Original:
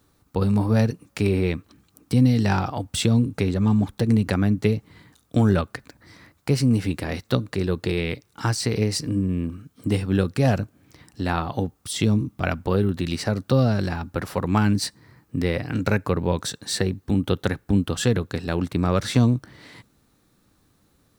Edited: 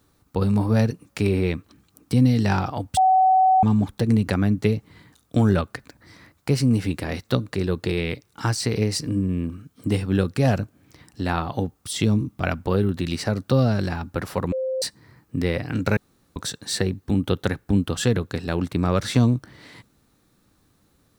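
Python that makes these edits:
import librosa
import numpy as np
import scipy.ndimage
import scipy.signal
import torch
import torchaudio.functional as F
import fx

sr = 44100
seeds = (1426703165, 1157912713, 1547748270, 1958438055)

y = fx.edit(x, sr, fx.bleep(start_s=2.97, length_s=0.66, hz=754.0, db=-13.0),
    fx.bleep(start_s=14.52, length_s=0.3, hz=522.0, db=-22.5),
    fx.room_tone_fill(start_s=15.97, length_s=0.39), tone=tone)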